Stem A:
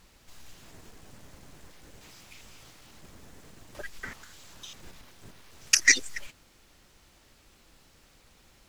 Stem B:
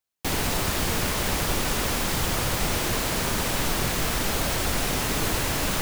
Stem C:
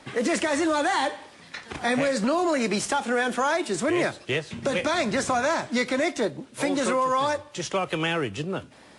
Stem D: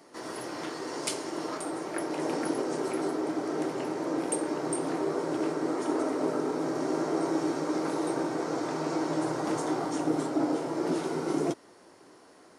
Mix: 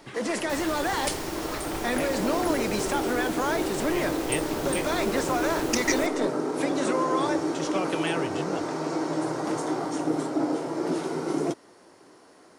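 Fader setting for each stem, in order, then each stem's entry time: −8.5, −12.0, −4.5, +1.5 decibels; 0.00, 0.25, 0.00, 0.00 seconds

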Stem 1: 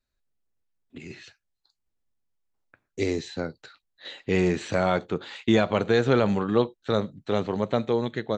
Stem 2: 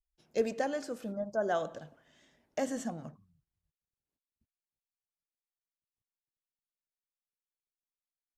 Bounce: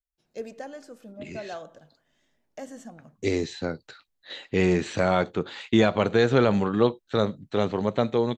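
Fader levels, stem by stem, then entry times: +1.0, −6.0 decibels; 0.25, 0.00 seconds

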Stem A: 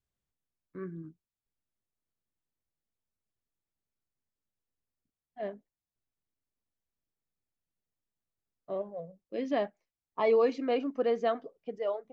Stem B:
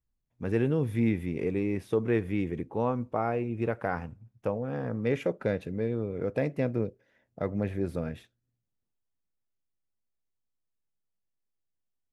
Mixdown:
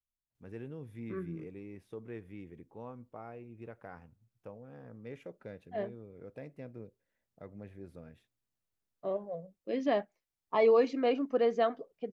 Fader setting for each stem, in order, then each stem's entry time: +0.5, −17.5 decibels; 0.35, 0.00 seconds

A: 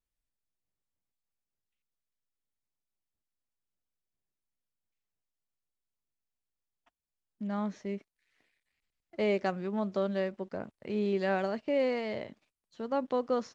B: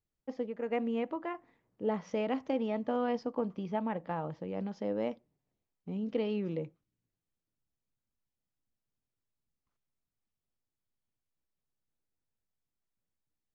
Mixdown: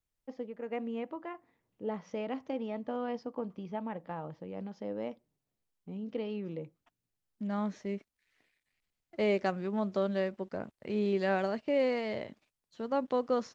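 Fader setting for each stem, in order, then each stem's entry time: 0.0, −4.0 decibels; 0.00, 0.00 seconds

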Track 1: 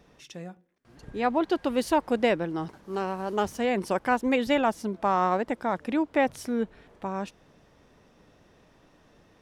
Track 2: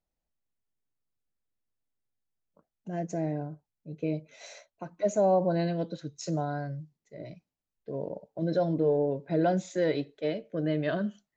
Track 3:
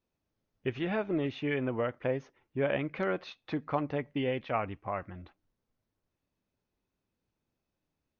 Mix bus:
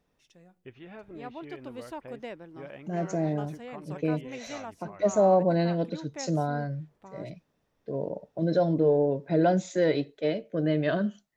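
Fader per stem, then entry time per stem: −16.5, +3.0, −14.0 decibels; 0.00, 0.00, 0.00 seconds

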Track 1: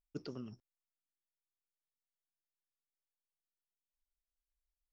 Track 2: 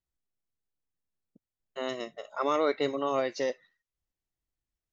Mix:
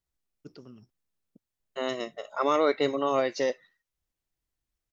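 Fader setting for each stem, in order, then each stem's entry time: −3.5, +3.0 decibels; 0.30, 0.00 seconds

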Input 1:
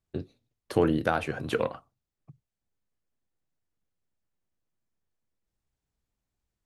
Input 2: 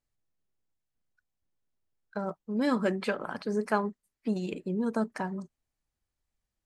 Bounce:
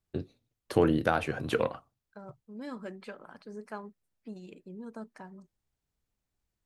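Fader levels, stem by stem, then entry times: −0.5, −13.5 decibels; 0.00, 0.00 seconds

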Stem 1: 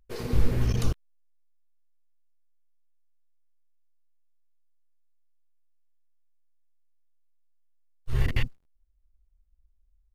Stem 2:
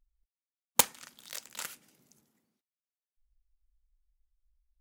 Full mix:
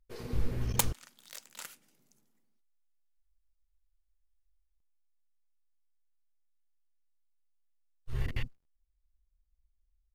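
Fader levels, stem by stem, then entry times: −8.5, −5.5 decibels; 0.00, 0.00 seconds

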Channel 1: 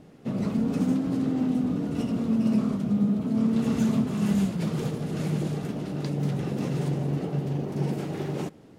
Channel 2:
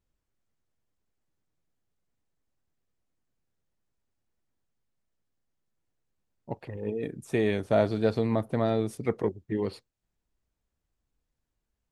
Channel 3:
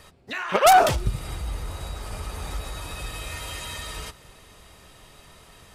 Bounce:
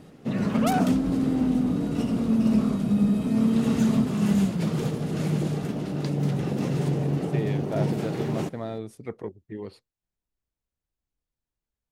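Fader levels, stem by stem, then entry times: +2.0, −7.0, −12.5 decibels; 0.00, 0.00, 0.00 seconds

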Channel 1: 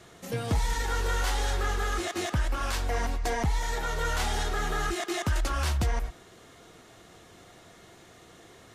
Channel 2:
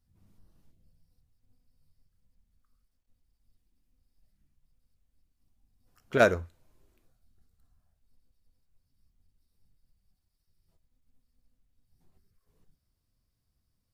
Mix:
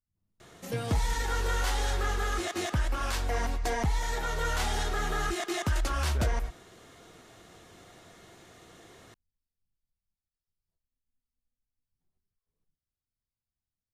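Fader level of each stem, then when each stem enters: −1.0, −17.0 decibels; 0.40, 0.00 seconds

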